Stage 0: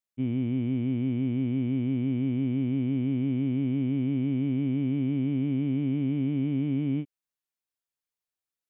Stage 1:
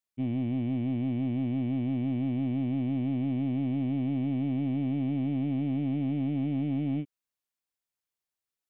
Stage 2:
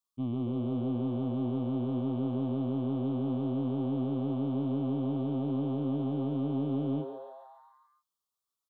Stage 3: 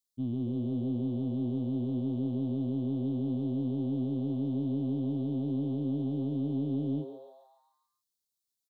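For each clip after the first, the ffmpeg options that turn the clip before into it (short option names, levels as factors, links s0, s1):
-af "asoftclip=type=tanh:threshold=0.0708"
-filter_complex "[0:a]firequalizer=gain_entry='entry(730,0);entry(1200,13);entry(1700,-27);entry(3200,3)':delay=0.05:min_phase=1,asplit=2[s0][s1];[s1]asplit=7[s2][s3][s4][s5][s6][s7][s8];[s2]adelay=139,afreqshift=130,volume=0.282[s9];[s3]adelay=278,afreqshift=260,volume=0.166[s10];[s4]adelay=417,afreqshift=390,volume=0.0977[s11];[s5]adelay=556,afreqshift=520,volume=0.0582[s12];[s6]adelay=695,afreqshift=650,volume=0.0343[s13];[s7]adelay=834,afreqshift=780,volume=0.0202[s14];[s8]adelay=973,afreqshift=910,volume=0.0119[s15];[s9][s10][s11][s12][s13][s14][s15]amix=inputs=7:normalize=0[s16];[s0][s16]amix=inputs=2:normalize=0,volume=0.75"
-af "firequalizer=gain_entry='entry(270,0);entry(1400,-21);entry(3900,3)':delay=0.05:min_phase=1"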